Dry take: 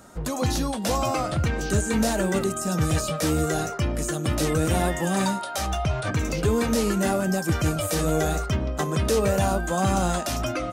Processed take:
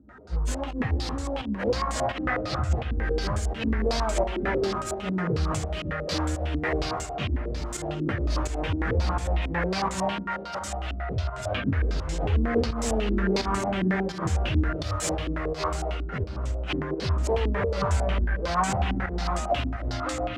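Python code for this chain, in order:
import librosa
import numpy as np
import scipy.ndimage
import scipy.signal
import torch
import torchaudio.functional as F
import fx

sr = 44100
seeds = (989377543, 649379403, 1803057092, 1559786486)

p1 = fx.self_delay(x, sr, depth_ms=0.42)
p2 = scipy.signal.sosfilt(scipy.signal.butter(4, 49.0, 'highpass', fs=sr, output='sos'), p1)
p3 = fx.low_shelf_res(p2, sr, hz=100.0, db=9.5, q=1.5)
p4 = fx.over_compress(p3, sr, threshold_db=-24.0, ratio=-1.0)
p5 = p3 + (p4 * librosa.db_to_amplitude(-1.0))
p6 = fx.stretch_vocoder_free(p5, sr, factor=1.9)
p7 = fx.volume_shaper(p6, sr, bpm=85, per_beat=1, depth_db=-12, release_ms=225.0, shape='fast start')
p8 = p7 + fx.echo_feedback(p7, sr, ms=280, feedback_pct=48, wet_db=-11.0, dry=0)
p9 = fx.filter_held_lowpass(p8, sr, hz=11.0, low_hz=280.0, high_hz=7500.0)
y = p9 * librosa.db_to_amplitude(-8.0)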